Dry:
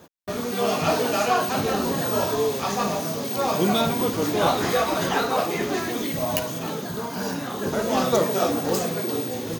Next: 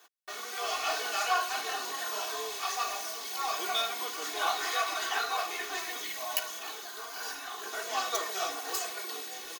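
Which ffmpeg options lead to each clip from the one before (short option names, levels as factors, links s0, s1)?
-af "highpass=1100,aecho=1:1:2.7:0.83,volume=0.531"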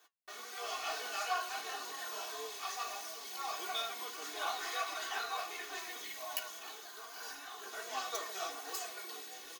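-af "flanger=delay=6.2:depth=2.8:regen=70:speed=1.6:shape=triangular,volume=0.708"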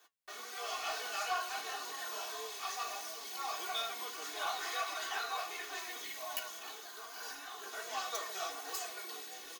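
-filter_complex "[0:a]acrossover=split=410[s0][s1];[s0]alimiter=level_in=33.5:limit=0.0631:level=0:latency=1:release=222,volume=0.0299[s2];[s2][s1]amix=inputs=2:normalize=0,asoftclip=type=tanh:threshold=0.0531,volume=1.12"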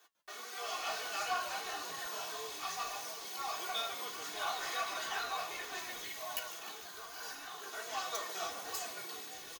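-filter_complex "[0:a]asplit=8[s0][s1][s2][s3][s4][s5][s6][s7];[s1]adelay=148,afreqshift=-140,volume=0.178[s8];[s2]adelay=296,afreqshift=-280,volume=0.11[s9];[s3]adelay=444,afreqshift=-420,volume=0.0684[s10];[s4]adelay=592,afreqshift=-560,volume=0.0422[s11];[s5]adelay=740,afreqshift=-700,volume=0.0263[s12];[s6]adelay=888,afreqshift=-840,volume=0.0162[s13];[s7]adelay=1036,afreqshift=-980,volume=0.0101[s14];[s0][s8][s9][s10][s11][s12][s13][s14]amix=inputs=8:normalize=0"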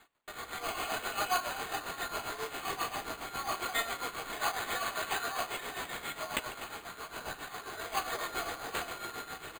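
-af "tremolo=f=7.4:d=0.69,acrusher=samples=8:mix=1:aa=0.000001,volume=2.11"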